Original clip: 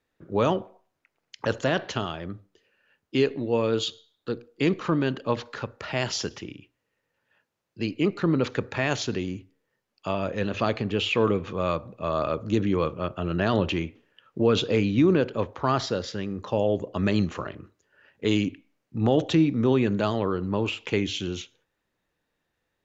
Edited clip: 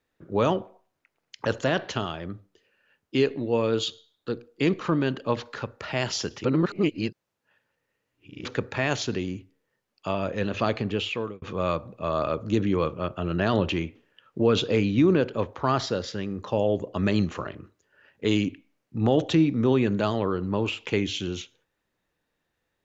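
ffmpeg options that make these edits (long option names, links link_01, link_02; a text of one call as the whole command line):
ffmpeg -i in.wav -filter_complex "[0:a]asplit=4[link_01][link_02][link_03][link_04];[link_01]atrim=end=6.442[link_05];[link_02]atrim=start=6.438:end=8.452,asetpts=PTS-STARTPTS,areverse[link_06];[link_03]atrim=start=8.448:end=11.42,asetpts=PTS-STARTPTS,afade=type=out:start_time=2.432:duration=0.54[link_07];[link_04]atrim=start=11.42,asetpts=PTS-STARTPTS,afade=type=in:duration=0.004:curve=hsin[link_08];[link_05][link_06]acrossfade=duration=0.004:curve1=hsin:curve2=hsin[link_09];[link_07][link_08]concat=n=2:v=0:a=1[link_10];[link_09][link_10]acrossfade=duration=0.004:curve1=hsin:curve2=hsin" out.wav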